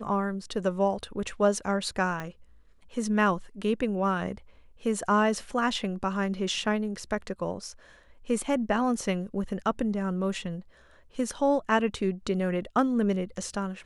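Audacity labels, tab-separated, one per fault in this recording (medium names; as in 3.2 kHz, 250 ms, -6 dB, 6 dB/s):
2.200000	2.200000	pop -21 dBFS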